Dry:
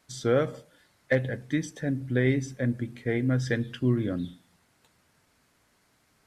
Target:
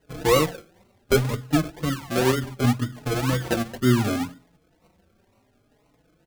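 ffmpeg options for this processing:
ffmpeg -i in.wav -filter_complex "[0:a]lowpass=frequency=8600:width=0.5412,lowpass=frequency=8600:width=1.3066,acrusher=samples=37:mix=1:aa=0.000001:lfo=1:lforange=22.2:lforate=2,asplit=2[link_01][link_02];[link_02]adelay=4.3,afreqshift=0.68[link_03];[link_01][link_03]amix=inputs=2:normalize=1,volume=7.5dB" out.wav

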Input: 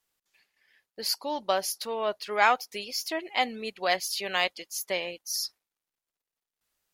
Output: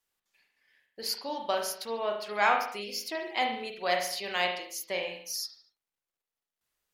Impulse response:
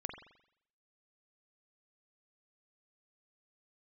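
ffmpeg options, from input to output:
-filter_complex "[1:a]atrim=start_sample=2205,afade=type=out:start_time=0.36:duration=0.01,atrim=end_sample=16317,asetrate=48510,aresample=44100[link_01];[0:a][link_01]afir=irnorm=-1:irlink=0"

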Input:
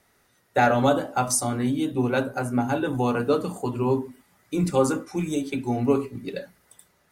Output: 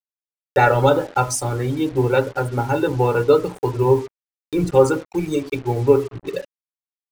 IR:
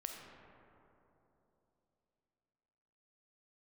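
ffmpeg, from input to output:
-af "afftfilt=real='re*gte(hypot(re,im),0.0158)':imag='im*gte(hypot(re,im),0.0158)':win_size=1024:overlap=0.75,highshelf=frequency=7900:gain=-9.5,aecho=1:1:2.2:0.98,aeval=exprs='sgn(val(0))*max(abs(val(0))-0.00708,0)':channel_layout=same,lowshelf=frequency=290:gain=4,acrusher=bits=6:mix=0:aa=0.5,acompressor=mode=upward:threshold=-31dB:ratio=2.5,volume=2.5dB"

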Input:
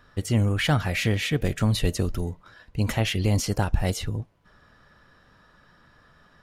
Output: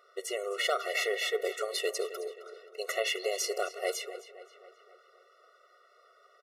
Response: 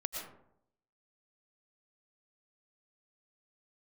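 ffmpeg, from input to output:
-filter_complex "[0:a]asplit=2[link_01][link_02];[link_02]adelay=264,lowpass=frequency=4100:poles=1,volume=-13dB,asplit=2[link_03][link_04];[link_04]adelay=264,lowpass=frequency=4100:poles=1,volume=0.55,asplit=2[link_05][link_06];[link_06]adelay=264,lowpass=frequency=4100:poles=1,volume=0.55,asplit=2[link_07][link_08];[link_08]adelay=264,lowpass=frequency=4100:poles=1,volume=0.55,asplit=2[link_09][link_10];[link_10]adelay=264,lowpass=frequency=4100:poles=1,volume=0.55,asplit=2[link_11][link_12];[link_12]adelay=264,lowpass=frequency=4100:poles=1,volume=0.55[link_13];[link_01][link_03][link_05][link_07][link_09][link_11][link_13]amix=inputs=7:normalize=0,afftfilt=real='re*eq(mod(floor(b*sr/1024/370),2),1)':imag='im*eq(mod(floor(b*sr/1024/370),2),1)':win_size=1024:overlap=0.75"

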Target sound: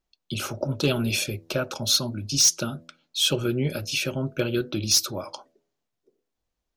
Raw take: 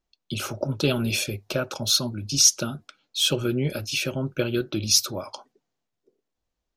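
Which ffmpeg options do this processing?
ffmpeg -i in.wav -af "bandreject=frequency=82.43:width_type=h:width=4,bandreject=frequency=164.86:width_type=h:width=4,bandreject=frequency=247.29:width_type=h:width=4,bandreject=frequency=329.72:width_type=h:width=4,bandreject=frequency=412.15:width_type=h:width=4,bandreject=frequency=494.58:width_type=h:width=4,bandreject=frequency=577.01:width_type=h:width=4,bandreject=frequency=659.44:width_type=h:width=4,volume=12.5dB,asoftclip=hard,volume=-12.5dB" out.wav

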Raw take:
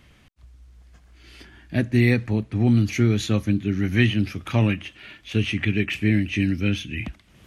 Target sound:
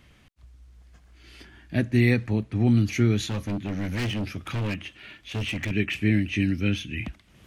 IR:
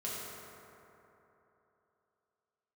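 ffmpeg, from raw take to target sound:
-filter_complex "[0:a]asettb=1/sr,asplit=3[link_01][link_02][link_03];[link_01]atrim=end=3.264[link_04];[link_02]atrim=start=3.26:end=5.71,asetpts=PTS-STARTPTS,afade=type=in:duration=0.004:curve=qsin,afade=type=out:start_time=2.446:duration=0.004:curve=qsin,volume=23dB,asoftclip=hard,volume=-23dB[link_05];[link_03]atrim=start=5.706[link_06];[link_04][link_05]acrossfade=duration=0.004:curve1=hsin:curve2=qsin[link_07];[link_07][link_06]acrossfade=duration=0.004:curve1=qsin:curve2=hsin,volume=-2dB"

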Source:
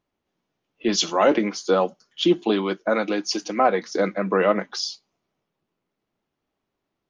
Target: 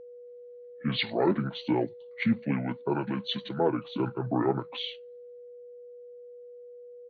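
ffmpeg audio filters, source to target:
ffmpeg -i in.wav -af "aeval=exprs='val(0)+0.0141*sin(2*PI*750*n/s)':channel_layout=same,asetrate=28595,aresample=44100,atempo=1.54221,volume=-7dB" out.wav

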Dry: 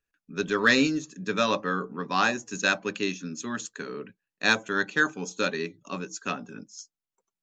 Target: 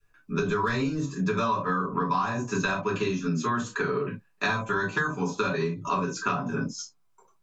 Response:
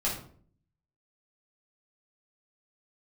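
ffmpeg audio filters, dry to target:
-filter_complex "[0:a]adynamicequalizer=threshold=0.00631:dfrequency=990:dqfactor=3.1:tfrequency=990:tqfactor=3.1:attack=5:release=100:ratio=0.375:range=4:mode=boostabove:tftype=bell[link_01];[1:a]atrim=start_sample=2205,afade=type=out:start_time=0.2:duration=0.01,atrim=end_sample=9261,asetrate=83790,aresample=44100[link_02];[link_01][link_02]afir=irnorm=-1:irlink=0,acrossover=split=200|5400[link_03][link_04][link_05];[link_03]acompressor=threshold=-34dB:ratio=4[link_06];[link_04]acompressor=threshold=-32dB:ratio=4[link_07];[link_05]acompressor=threshold=-53dB:ratio=4[link_08];[link_06][link_07][link_08]amix=inputs=3:normalize=0,equalizer=frequency=125:width_type=o:width=1:gain=10,equalizer=frequency=250:width_type=o:width=1:gain=-4,equalizer=frequency=500:width_type=o:width=1:gain=4,equalizer=frequency=1000:width_type=o:width=1:gain=9,acompressor=threshold=-34dB:ratio=4,volume=9dB"

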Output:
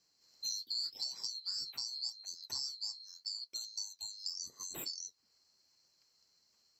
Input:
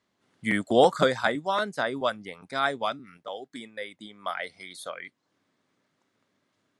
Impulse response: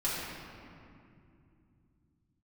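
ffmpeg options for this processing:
-af "afftfilt=real='real(if(lt(b,736),b+184*(1-2*mod(floor(b/184),2)),b),0)':imag='imag(if(lt(b,736),b+184*(1-2*mod(floor(b/184),2)),b),0)':win_size=2048:overlap=0.75,highpass=frequency=47:poles=1,acompressor=threshold=-39dB:ratio=6,flanger=delay=5:depth=9.8:regen=-45:speed=0.84:shape=triangular,volume=5dB"

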